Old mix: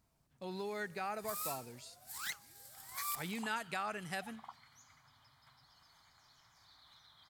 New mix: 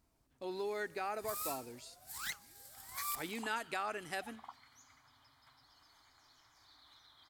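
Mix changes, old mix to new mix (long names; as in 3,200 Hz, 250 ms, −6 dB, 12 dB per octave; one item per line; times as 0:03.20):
speech: add low shelf with overshoot 230 Hz −6.5 dB, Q 3
master: add low-shelf EQ 130 Hz +8 dB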